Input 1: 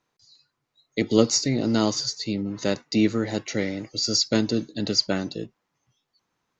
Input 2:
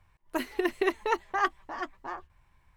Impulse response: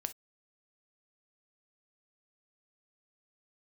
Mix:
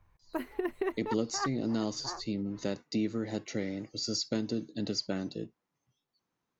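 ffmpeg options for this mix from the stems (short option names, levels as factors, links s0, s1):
-filter_complex "[0:a]equalizer=f=230:w=0.41:g=5,volume=0.251,asplit=3[s0][s1][s2];[s1]volume=0.299[s3];[1:a]equalizer=f=5400:t=o:w=2.4:g=-14,volume=0.841[s4];[s2]apad=whole_len=122155[s5];[s4][s5]sidechaincompress=threshold=0.0224:ratio=8:attack=20:release=166[s6];[2:a]atrim=start_sample=2205[s7];[s3][s7]afir=irnorm=-1:irlink=0[s8];[s0][s6][s8]amix=inputs=3:normalize=0,acompressor=threshold=0.0355:ratio=2.5"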